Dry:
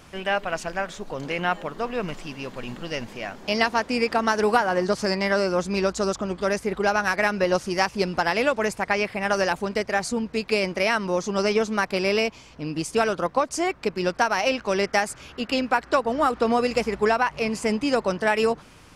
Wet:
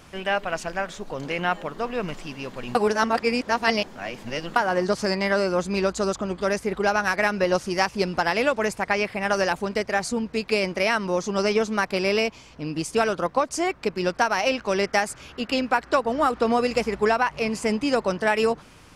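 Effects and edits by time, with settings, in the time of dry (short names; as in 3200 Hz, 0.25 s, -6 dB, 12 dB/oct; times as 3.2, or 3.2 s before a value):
2.75–4.56 reverse
5.07–6.41 notch 5500 Hz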